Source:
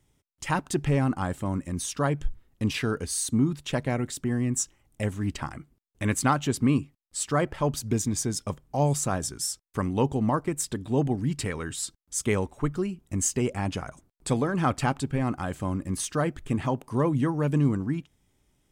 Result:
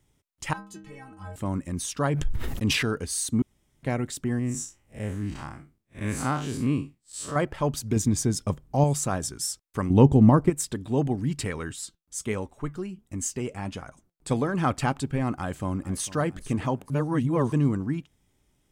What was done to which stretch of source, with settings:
0.53–1.36 s: inharmonic resonator 94 Hz, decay 0.75 s, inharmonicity 0.03
2.10–2.83 s: decay stretcher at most 34 dB/s
3.42–3.83 s: room tone
4.39–7.36 s: spectral blur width 112 ms
7.96–8.84 s: bass shelf 410 Hz +6 dB
9.90–10.50 s: bass shelf 440 Hz +12 dB
11.72–14.31 s: flange 1.4 Hz, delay 3.3 ms, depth 3.5 ms, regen +79%
15.32–16.18 s: echo throw 450 ms, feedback 35%, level -16.5 dB
16.90–17.52 s: reverse

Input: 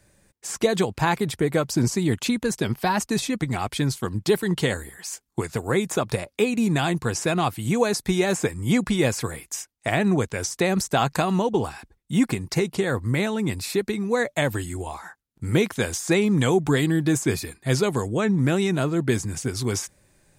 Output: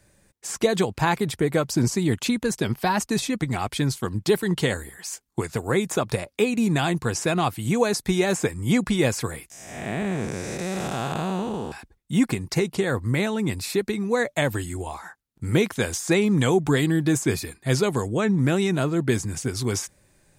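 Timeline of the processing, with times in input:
9.50–11.72 s: spectral blur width 365 ms

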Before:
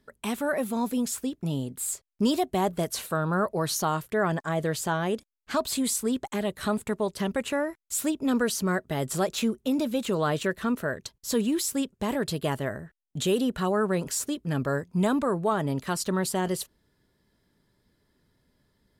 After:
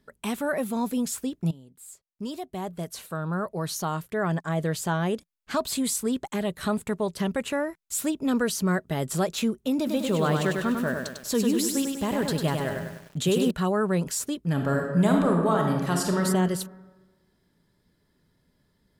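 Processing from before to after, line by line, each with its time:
1.51–5.11 s: fade in, from -20.5 dB
9.77–13.51 s: bit-crushed delay 99 ms, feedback 55%, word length 8-bit, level -4 dB
14.52–16.23 s: reverb throw, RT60 1.3 s, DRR 1 dB
whole clip: peaking EQ 170 Hz +5.5 dB 0.32 oct

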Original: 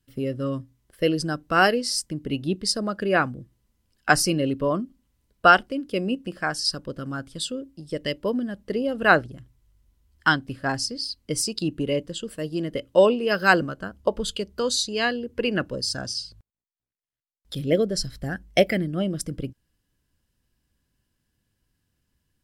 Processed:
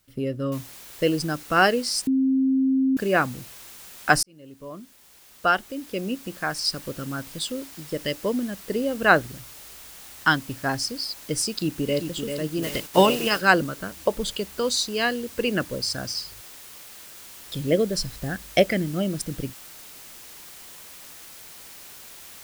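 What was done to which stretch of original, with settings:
0.52 s: noise floor step -68 dB -44 dB
2.07–2.97 s: bleep 265 Hz -17.5 dBFS
4.23–6.81 s: fade in
11.49–12.02 s: echo throw 390 ms, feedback 55%, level -7 dB
12.62–13.40 s: spectral peaks clipped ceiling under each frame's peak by 16 dB

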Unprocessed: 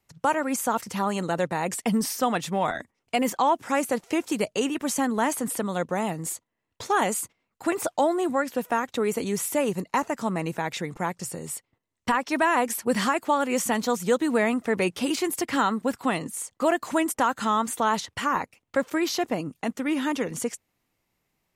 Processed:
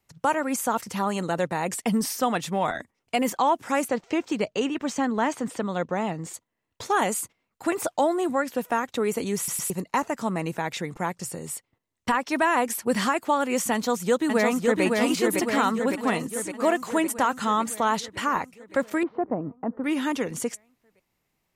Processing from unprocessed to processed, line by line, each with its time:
3.88–6.34 s: boxcar filter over 4 samples
9.37 s: stutter in place 0.11 s, 3 plays
13.73–14.83 s: echo throw 560 ms, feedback 65%, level -2.5 dB
19.03–19.84 s: low-pass 1.2 kHz 24 dB/octave

